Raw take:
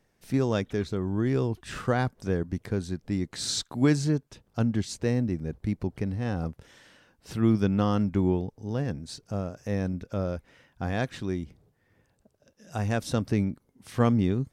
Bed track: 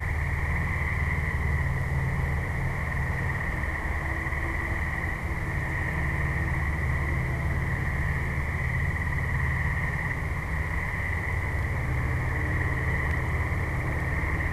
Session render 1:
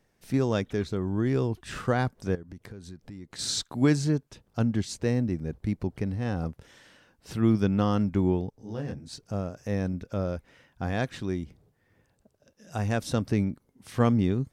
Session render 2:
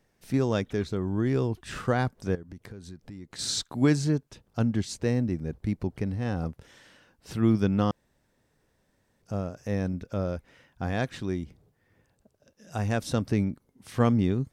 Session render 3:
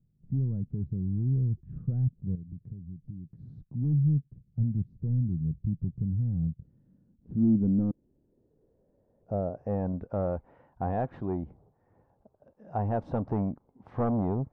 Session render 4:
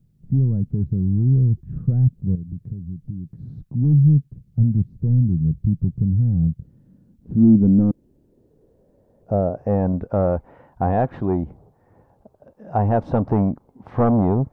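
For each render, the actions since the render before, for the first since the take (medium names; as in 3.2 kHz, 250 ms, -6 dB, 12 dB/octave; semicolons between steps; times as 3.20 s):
2.35–3.39 s: compression 5:1, threshold -40 dBFS; 8.50–9.13 s: detune thickener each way 60 cents
7.91–9.22 s: room tone
saturation -24 dBFS, distortion -9 dB; low-pass sweep 150 Hz -> 850 Hz, 6.52–9.89 s
trim +10.5 dB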